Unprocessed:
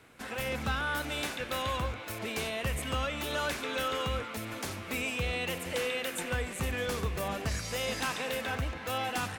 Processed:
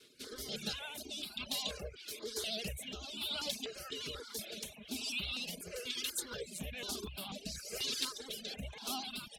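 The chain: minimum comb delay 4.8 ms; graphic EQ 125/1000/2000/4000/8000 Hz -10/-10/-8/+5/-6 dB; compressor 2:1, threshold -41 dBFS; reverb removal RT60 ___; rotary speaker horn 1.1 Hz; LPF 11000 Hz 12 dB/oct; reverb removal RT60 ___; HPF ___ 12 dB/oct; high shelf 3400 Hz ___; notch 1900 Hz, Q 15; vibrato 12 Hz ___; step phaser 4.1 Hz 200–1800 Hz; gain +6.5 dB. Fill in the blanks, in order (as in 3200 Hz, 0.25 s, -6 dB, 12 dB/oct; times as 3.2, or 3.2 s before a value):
0.64 s, 0.56 s, 70 Hz, +7 dB, 61 cents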